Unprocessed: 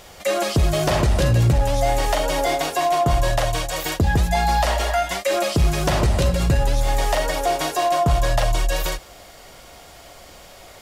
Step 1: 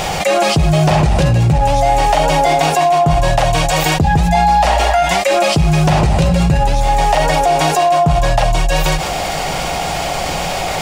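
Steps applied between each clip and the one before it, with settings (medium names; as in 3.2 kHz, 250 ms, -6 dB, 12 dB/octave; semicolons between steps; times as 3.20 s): graphic EQ with 31 bands 160 Hz +12 dB, 800 Hz +10 dB, 2.5 kHz +5 dB, 12.5 kHz -11 dB; level flattener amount 70%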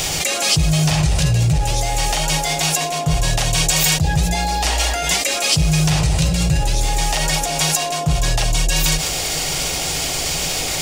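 FFT filter 160 Hz 0 dB, 250 Hz -19 dB, 6.2 kHz +10 dB; band noise 240–670 Hz -31 dBFS; trim -3.5 dB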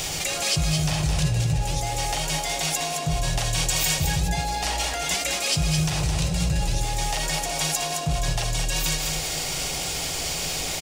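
delay 215 ms -6 dB; trim -7.5 dB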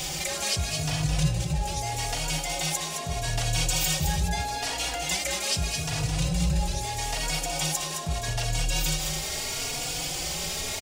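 endless flanger 3.5 ms +0.79 Hz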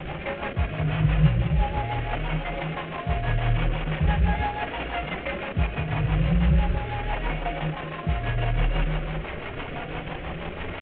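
CVSD coder 16 kbps; rotary cabinet horn 6 Hz; trim +7 dB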